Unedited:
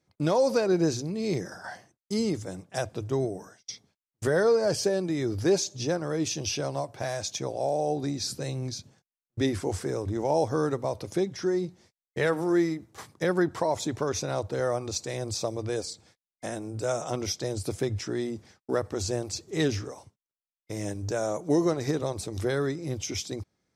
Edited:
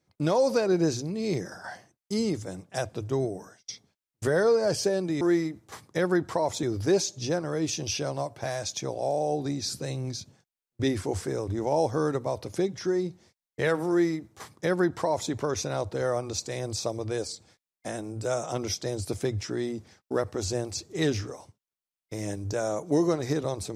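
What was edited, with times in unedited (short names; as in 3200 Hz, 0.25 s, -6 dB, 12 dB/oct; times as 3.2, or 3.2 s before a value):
12.47–13.89 copy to 5.21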